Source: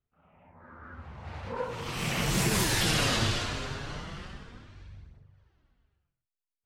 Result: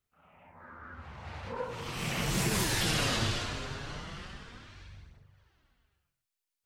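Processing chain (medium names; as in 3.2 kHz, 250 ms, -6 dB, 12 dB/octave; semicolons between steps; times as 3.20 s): tape noise reduction on one side only encoder only; trim -3 dB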